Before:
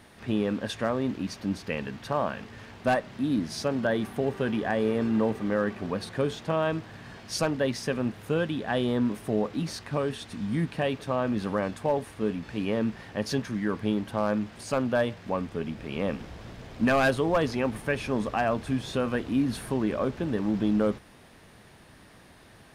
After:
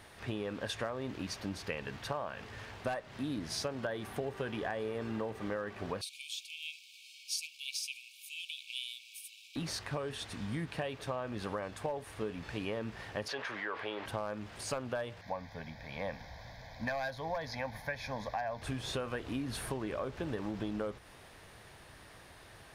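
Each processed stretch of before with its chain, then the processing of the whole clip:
6.01–9.56 s: brick-wall FIR high-pass 2.2 kHz + treble shelf 8.5 kHz +6 dB
13.28–14.06 s: three-band isolator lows -23 dB, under 450 Hz, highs -19 dB, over 3.9 kHz + level flattener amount 50%
15.21–18.62 s: bass shelf 130 Hz -7 dB + static phaser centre 1.9 kHz, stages 8
whole clip: peaking EQ 220 Hz -9.5 dB 1.1 oct; compression 10:1, threshold -33 dBFS

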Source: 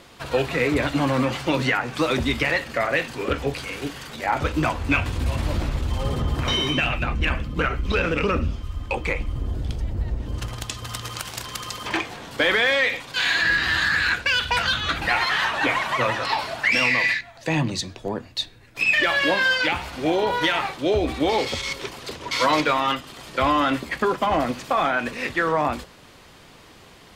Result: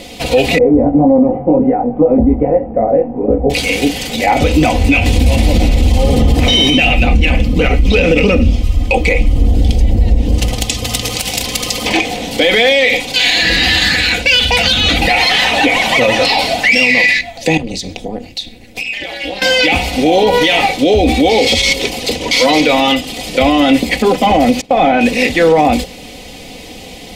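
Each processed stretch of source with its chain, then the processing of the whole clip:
0.58–3.50 s: inverse Chebyshev low-pass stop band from 5.1 kHz, stop band 80 dB + chorus 1.8 Hz, delay 18.5 ms, depth 2.4 ms
17.57–19.42 s: compression 8:1, threshold -31 dBFS + AM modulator 230 Hz, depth 85%
24.61–25.01 s: low-pass 1.7 kHz 6 dB/octave + expander -33 dBFS
whole clip: high-order bell 1.3 kHz -15 dB 1 oct; comb 4 ms, depth 56%; loudness maximiser +17.5 dB; trim -1 dB

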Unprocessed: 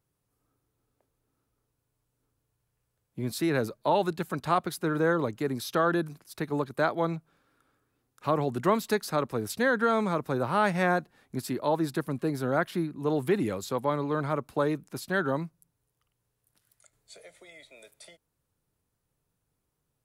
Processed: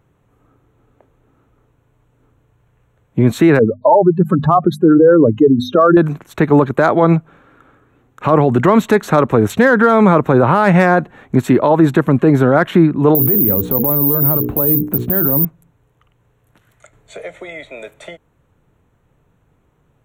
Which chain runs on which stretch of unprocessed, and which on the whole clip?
3.59–5.97 s: spectral contrast enhancement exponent 2.6 + hum notches 50/100/150/200/250 Hz
13.15–15.45 s: tilt shelf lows +10 dB, about 870 Hz + hum notches 60/120/180/240/300/360/420/480 Hz + careless resampling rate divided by 3×, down filtered, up zero stuff
whole clip: local Wiener filter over 9 samples; loudness maximiser +23 dB; trim -1 dB

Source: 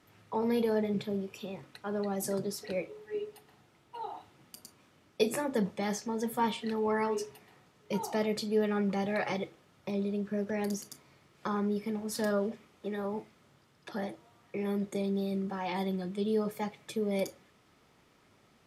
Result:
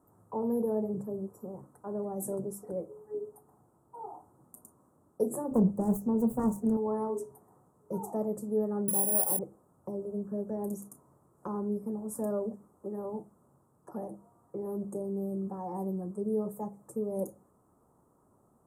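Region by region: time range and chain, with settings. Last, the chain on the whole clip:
5.51–6.77 s: self-modulated delay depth 0.4 ms + bass shelf 370 Hz +12 dB
8.88–9.39 s: Bessel high-pass 180 Hz + careless resampling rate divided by 4×, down none, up zero stuff
whole clip: Chebyshev band-stop 1.1–8.3 kHz, order 3; hum notches 50/100/150/200 Hz; dynamic bell 1.2 kHz, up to -6 dB, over -51 dBFS, Q 1.4

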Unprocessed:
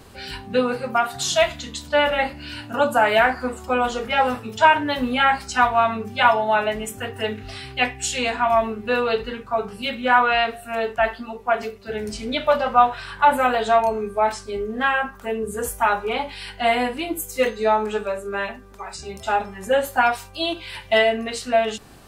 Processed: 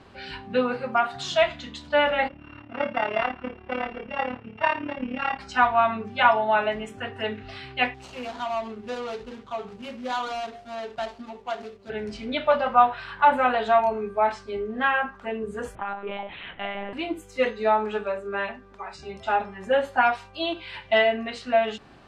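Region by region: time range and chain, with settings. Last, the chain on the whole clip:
2.28–5.39 s: sorted samples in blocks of 16 samples + AM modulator 36 Hz, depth 65% + distance through air 410 m
7.94–11.90 s: median filter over 25 samples + tone controls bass -2 dB, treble +13 dB + compression 1.5:1, threshold -34 dBFS
15.75–16.93 s: compression, threshold -25 dBFS + monotone LPC vocoder at 8 kHz 200 Hz
whole clip: low-pass 3.4 kHz 12 dB/octave; bass shelf 100 Hz -8.5 dB; band-stop 460 Hz, Q 12; trim -2 dB

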